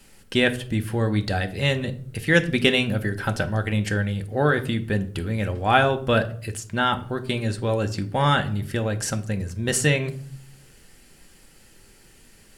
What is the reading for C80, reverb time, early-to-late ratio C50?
19.5 dB, 0.55 s, 16.0 dB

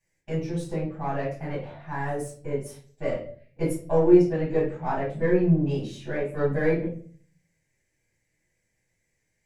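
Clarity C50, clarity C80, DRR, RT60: 5.5 dB, 11.0 dB, -8.5 dB, 0.45 s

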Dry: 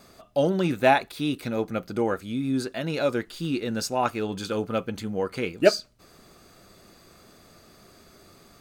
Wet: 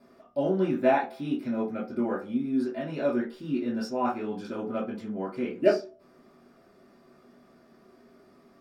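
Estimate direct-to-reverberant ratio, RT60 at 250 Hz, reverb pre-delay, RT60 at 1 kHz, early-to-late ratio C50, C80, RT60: -8.0 dB, 0.35 s, 3 ms, 0.35 s, 8.5 dB, 14.5 dB, 0.40 s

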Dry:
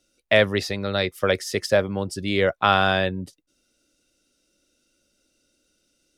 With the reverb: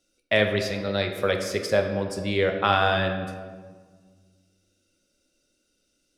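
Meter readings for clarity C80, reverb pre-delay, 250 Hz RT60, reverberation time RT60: 8.0 dB, 5 ms, 2.3 s, 1.5 s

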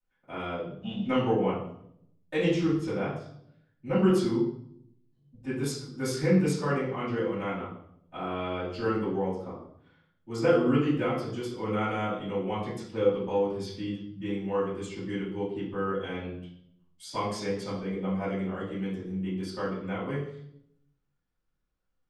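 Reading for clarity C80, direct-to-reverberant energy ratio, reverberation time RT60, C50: 7.0 dB, -13.5 dB, 0.70 s, 3.5 dB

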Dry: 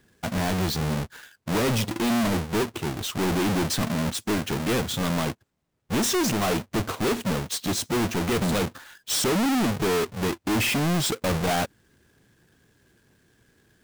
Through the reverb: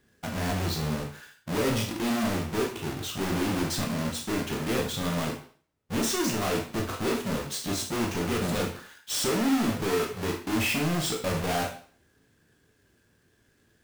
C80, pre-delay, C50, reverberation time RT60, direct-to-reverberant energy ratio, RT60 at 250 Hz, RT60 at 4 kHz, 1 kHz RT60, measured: 11.5 dB, 16 ms, 7.5 dB, 0.45 s, 0.5 dB, 0.45 s, 0.45 s, 0.45 s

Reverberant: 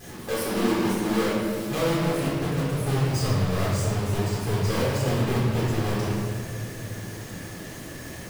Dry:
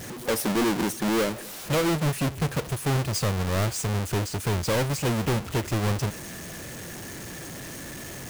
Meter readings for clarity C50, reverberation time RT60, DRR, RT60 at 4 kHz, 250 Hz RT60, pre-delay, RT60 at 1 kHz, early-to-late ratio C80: -2.0 dB, 2.5 s, -8.0 dB, 1.4 s, 3.5 s, 3 ms, 2.0 s, 0.5 dB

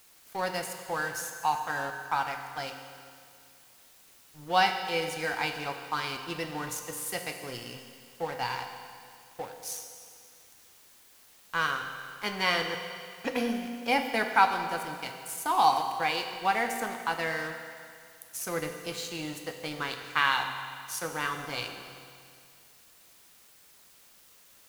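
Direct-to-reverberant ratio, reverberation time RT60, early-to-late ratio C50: 4.5 dB, 2.2 s, 6.0 dB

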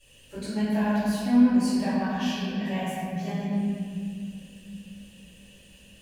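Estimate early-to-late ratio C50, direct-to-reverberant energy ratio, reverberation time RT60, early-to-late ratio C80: -3.5 dB, -17.0 dB, 2.3 s, -1.5 dB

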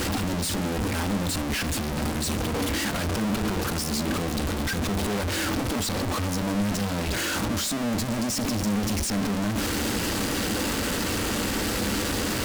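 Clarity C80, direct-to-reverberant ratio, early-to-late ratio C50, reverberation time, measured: 19.5 dB, 11.5 dB, 16.5 dB, 0.70 s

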